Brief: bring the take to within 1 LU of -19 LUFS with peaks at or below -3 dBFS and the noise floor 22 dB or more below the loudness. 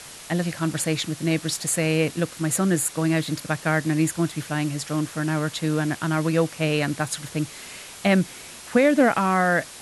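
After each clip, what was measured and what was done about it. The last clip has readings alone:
noise floor -41 dBFS; noise floor target -46 dBFS; loudness -23.5 LUFS; peak level -8.0 dBFS; loudness target -19.0 LUFS
-> noise reduction 6 dB, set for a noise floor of -41 dBFS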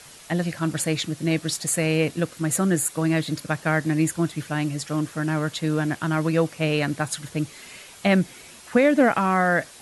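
noise floor -46 dBFS; loudness -23.5 LUFS; peak level -8.5 dBFS; loudness target -19.0 LUFS
-> trim +4.5 dB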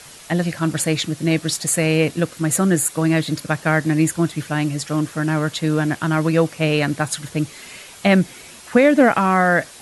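loudness -19.0 LUFS; peak level -4.0 dBFS; noise floor -41 dBFS

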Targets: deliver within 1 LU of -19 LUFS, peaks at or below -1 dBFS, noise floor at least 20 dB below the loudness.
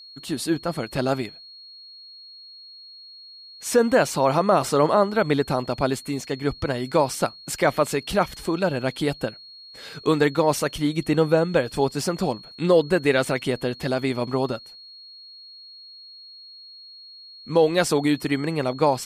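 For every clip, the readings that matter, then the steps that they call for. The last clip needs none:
steady tone 4.3 kHz; tone level -42 dBFS; loudness -23.0 LUFS; peak level -7.0 dBFS; loudness target -19.0 LUFS
-> band-stop 4.3 kHz, Q 30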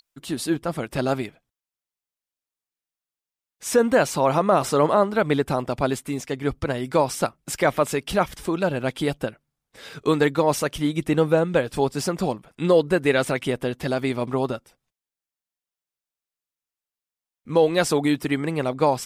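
steady tone not found; loudness -23.0 LUFS; peak level -7.0 dBFS; loudness target -19.0 LUFS
-> trim +4 dB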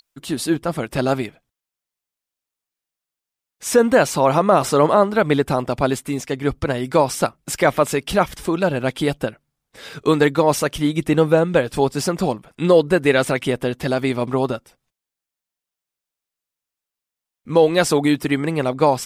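loudness -19.0 LUFS; peak level -3.0 dBFS; noise floor -87 dBFS

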